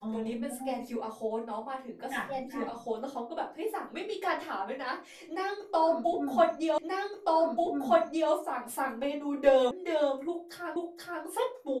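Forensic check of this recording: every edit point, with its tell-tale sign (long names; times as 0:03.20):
0:06.78: the same again, the last 1.53 s
0:09.71: cut off before it has died away
0:10.76: the same again, the last 0.48 s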